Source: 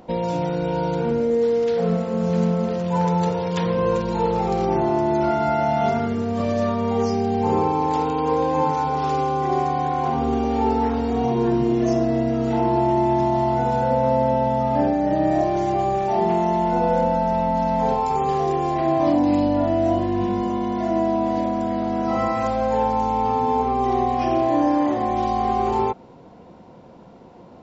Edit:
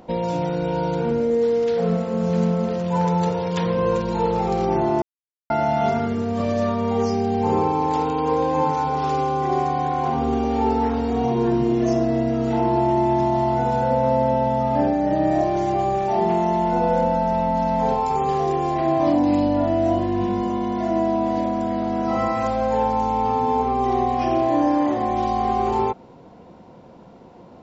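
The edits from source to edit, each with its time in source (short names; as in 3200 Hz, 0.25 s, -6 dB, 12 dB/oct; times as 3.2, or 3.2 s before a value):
5.02–5.5 mute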